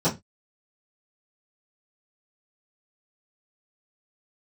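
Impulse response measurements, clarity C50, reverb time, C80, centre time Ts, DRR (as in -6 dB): 14.5 dB, 0.20 s, 23.5 dB, 18 ms, -14.0 dB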